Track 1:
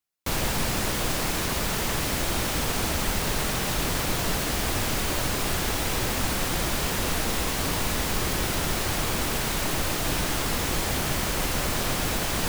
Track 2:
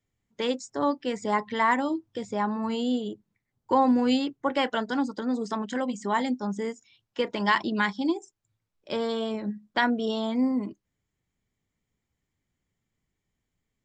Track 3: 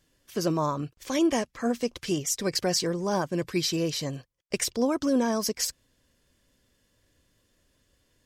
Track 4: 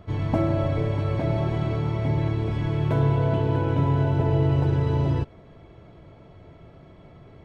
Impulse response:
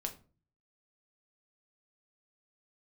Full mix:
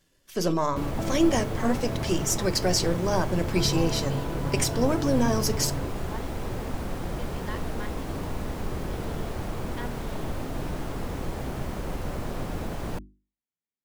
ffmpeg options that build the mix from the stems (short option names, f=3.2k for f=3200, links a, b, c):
-filter_complex "[0:a]tiltshelf=f=1.4k:g=9,adelay=500,volume=-10.5dB[a];[1:a]highpass=210,volume=-16.5dB[b];[2:a]aeval=exprs='if(lt(val(0),0),0.708*val(0),val(0))':c=same,volume=-1dB,asplit=2[c][d];[d]volume=-4dB[e];[3:a]adelay=650,volume=-9.5dB[f];[4:a]atrim=start_sample=2205[g];[e][g]afir=irnorm=-1:irlink=0[h];[a][b][c][f][h]amix=inputs=5:normalize=0,bandreject=f=50:t=h:w=6,bandreject=f=100:t=h:w=6,bandreject=f=150:t=h:w=6,bandreject=f=200:t=h:w=6,bandreject=f=250:t=h:w=6,bandreject=f=300:t=h:w=6,bandreject=f=350:t=h:w=6"